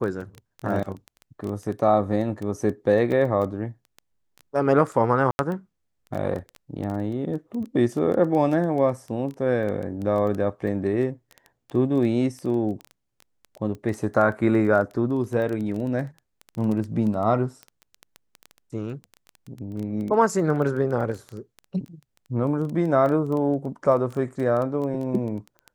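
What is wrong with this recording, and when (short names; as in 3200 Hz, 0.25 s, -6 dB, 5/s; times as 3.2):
crackle 10/s -28 dBFS
3.12 gap 3.2 ms
5.31–5.39 gap 81 ms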